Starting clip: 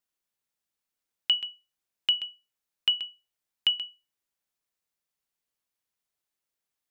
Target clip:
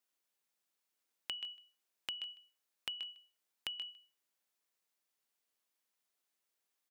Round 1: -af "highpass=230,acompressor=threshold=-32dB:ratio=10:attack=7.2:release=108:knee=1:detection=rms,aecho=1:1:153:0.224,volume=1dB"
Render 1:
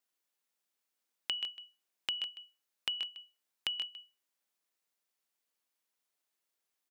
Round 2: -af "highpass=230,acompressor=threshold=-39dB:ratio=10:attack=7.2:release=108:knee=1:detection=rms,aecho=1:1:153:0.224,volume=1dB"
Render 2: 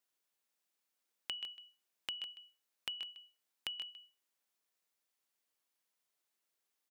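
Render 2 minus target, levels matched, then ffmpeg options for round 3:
echo-to-direct +8 dB
-af "highpass=230,acompressor=threshold=-39dB:ratio=10:attack=7.2:release=108:knee=1:detection=rms,aecho=1:1:153:0.0891,volume=1dB"

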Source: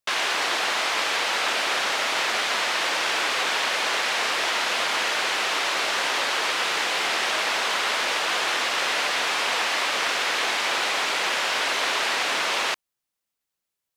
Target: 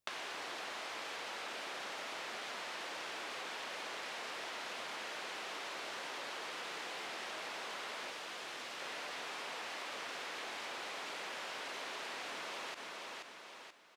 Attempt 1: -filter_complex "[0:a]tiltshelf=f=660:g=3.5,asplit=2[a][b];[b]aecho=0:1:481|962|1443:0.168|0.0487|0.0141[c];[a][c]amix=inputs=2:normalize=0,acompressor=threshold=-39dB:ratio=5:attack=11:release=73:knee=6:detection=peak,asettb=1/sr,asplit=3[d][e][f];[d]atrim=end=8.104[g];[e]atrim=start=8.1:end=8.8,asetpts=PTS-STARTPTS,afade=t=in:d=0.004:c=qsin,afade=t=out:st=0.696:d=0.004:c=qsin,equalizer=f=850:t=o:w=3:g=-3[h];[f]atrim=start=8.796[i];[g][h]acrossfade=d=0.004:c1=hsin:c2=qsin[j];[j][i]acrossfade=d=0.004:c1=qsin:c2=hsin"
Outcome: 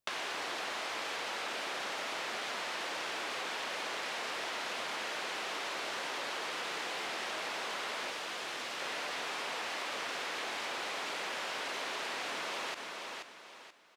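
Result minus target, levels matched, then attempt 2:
compressor: peak gain reduction -5.5 dB
-filter_complex "[0:a]tiltshelf=f=660:g=3.5,asplit=2[a][b];[b]aecho=0:1:481|962|1443:0.168|0.0487|0.0141[c];[a][c]amix=inputs=2:normalize=0,acompressor=threshold=-46dB:ratio=5:attack=11:release=73:knee=6:detection=peak,asettb=1/sr,asplit=3[d][e][f];[d]atrim=end=8.104[g];[e]atrim=start=8.1:end=8.8,asetpts=PTS-STARTPTS,afade=t=in:d=0.004:c=qsin,afade=t=out:st=0.696:d=0.004:c=qsin,equalizer=f=850:t=o:w=3:g=-3[h];[f]atrim=start=8.796[i];[g][h]acrossfade=d=0.004:c1=hsin:c2=qsin[j];[j][i]acrossfade=d=0.004:c1=qsin:c2=hsin"

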